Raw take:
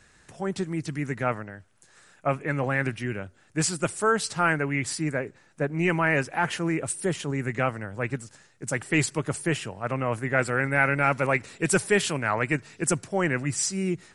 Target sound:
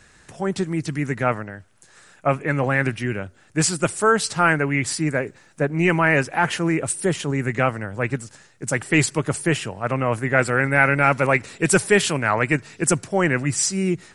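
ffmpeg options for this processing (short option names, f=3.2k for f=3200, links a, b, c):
-filter_complex "[0:a]asettb=1/sr,asplit=3[a][b][c];[a]atrim=end=5.144[d];[b]atrim=start=5.14:end=5.61,asetpts=PTS-STARTPTS,afade=t=in:d=0.004:c=qsin,afade=t=out:st=0.466:d=0.004:c=qsin,highshelf=f=4.4k:g=5[e];[c]atrim=start=5.606[f];[d][e]acrossfade=d=0.004:c1=hsin:c2=qsin[g];[g][f]acrossfade=d=0.004:c1=qsin:c2=hsin,volume=5.5dB"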